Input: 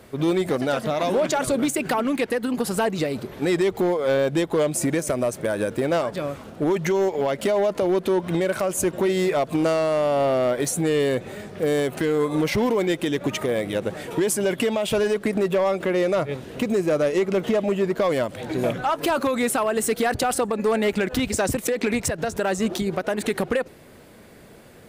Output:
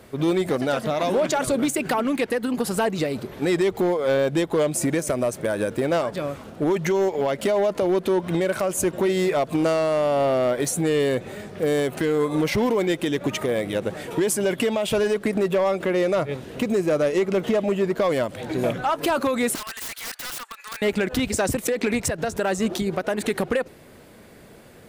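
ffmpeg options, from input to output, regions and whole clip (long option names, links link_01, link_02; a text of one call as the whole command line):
ffmpeg -i in.wav -filter_complex "[0:a]asettb=1/sr,asplit=3[link_01][link_02][link_03];[link_01]atrim=end=19.554[link_04];[link_02]atrim=start=19.55:end=20.82,asetpts=PTS-STARTPTS,afade=type=in:duration=0.004:curve=qsin,afade=type=out:start_time=1.266:duration=0.004:curve=qsin,highpass=frequency=1300:width=0.5412,highpass=frequency=1300:width=1.3066,aeval=exprs='(mod(22.4*val(0)+1,2)-1)/22.4':channel_layout=same[link_05];[link_03]atrim=start=20.816[link_06];[link_04][link_05]acrossfade=duration=0.004:curve1=hsin:curve2=qsin[link_07];[link_07][link_06]acrossfade=duration=0.004:curve1=qsin:curve2=hsin" out.wav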